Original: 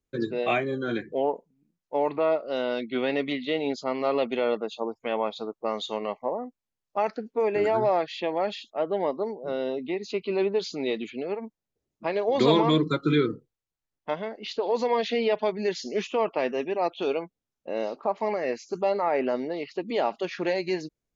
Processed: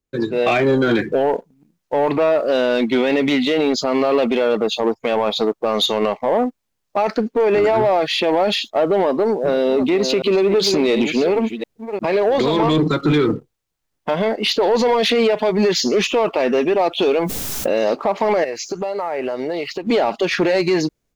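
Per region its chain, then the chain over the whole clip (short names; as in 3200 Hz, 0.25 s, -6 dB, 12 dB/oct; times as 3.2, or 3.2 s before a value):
9.16–12.6 reverse delay 0.354 s, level -13.5 dB + compressor 5:1, threshold -29 dBFS
17.21–17.84 high shelf 4900 Hz +11 dB + backwards sustainer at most 21 dB/s
18.44–19.87 bell 230 Hz -9 dB 0.74 oct + compressor 16:1, threshold -38 dBFS
whole clip: AGC gain up to 13 dB; limiter -12.5 dBFS; sample leveller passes 1; gain +3 dB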